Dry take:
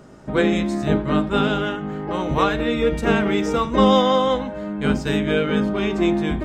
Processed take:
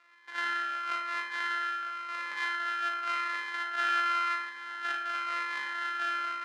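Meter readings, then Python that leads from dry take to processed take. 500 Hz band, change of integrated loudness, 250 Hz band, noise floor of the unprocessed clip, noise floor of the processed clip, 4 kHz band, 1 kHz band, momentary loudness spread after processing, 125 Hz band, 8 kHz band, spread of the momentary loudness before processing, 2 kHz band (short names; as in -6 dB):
-32.0 dB, -11.5 dB, -35.0 dB, -31 dBFS, -44 dBFS, -11.0 dB, -7.0 dB, 7 LU, under -40 dB, -10.0 dB, 8 LU, -3.0 dB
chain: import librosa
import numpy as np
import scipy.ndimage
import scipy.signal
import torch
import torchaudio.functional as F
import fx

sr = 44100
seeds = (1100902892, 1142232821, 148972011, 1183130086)

p1 = np.r_[np.sort(x[:len(x) // 128 * 128].reshape(-1, 128), axis=1).ravel(), x[len(x) // 128 * 128:]]
p2 = fx.rider(p1, sr, range_db=3, speed_s=0.5)
p3 = p1 + F.gain(torch.from_numpy(p2), 1.0).numpy()
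p4 = fx.ladder_bandpass(p3, sr, hz=1700.0, resonance_pct=55)
p5 = p4 + fx.room_flutter(p4, sr, wall_m=6.8, rt60_s=0.32, dry=0)
p6 = fx.rev_spring(p5, sr, rt60_s=1.2, pass_ms=(32,), chirp_ms=50, drr_db=3.0)
p7 = fx.notch_cascade(p6, sr, direction='falling', hz=0.93)
y = F.gain(torch.from_numpy(p7), -6.0).numpy()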